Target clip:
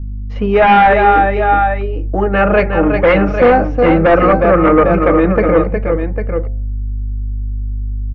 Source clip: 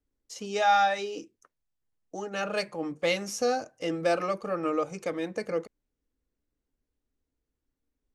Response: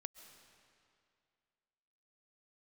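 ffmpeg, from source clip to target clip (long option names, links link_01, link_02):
-af "aeval=exprs='val(0)+0.00355*(sin(2*PI*50*n/s)+sin(2*PI*2*50*n/s)/2+sin(2*PI*3*50*n/s)/3+sin(2*PI*4*50*n/s)/4+sin(2*PI*5*50*n/s)/5)':channel_layout=same,lowshelf=frequency=110:gain=10,aecho=1:1:363|801:0.447|0.316,aresample=16000,aeval=exprs='0.266*sin(PI/2*2.82*val(0)/0.266)':channel_layout=same,aresample=44100,lowpass=frequency=2200:width=0.5412,lowpass=frequency=2200:width=1.3066,bandreject=frequency=74.74:width_type=h:width=4,bandreject=frequency=149.48:width_type=h:width=4,bandreject=frequency=224.22:width_type=h:width=4,bandreject=frequency=298.96:width_type=h:width=4,bandreject=frequency=373.7:width_type=h:width=4,bandreject=frequency=448.44:width_type=h:width=4,bandreject=frequency=523.18:width_type=h:width=4,bandreject=frequency=597.92:width_type=h:width=4,bandreject=frequency=672.66:width_type=h:width=4,bandreject=frequency=747.4:width_type=h:width=4,bandreject=frequency=822.14:width_type=h:width=4,bandreject=frequency=896.88:width_type=h:width=4,volume=7.5dB"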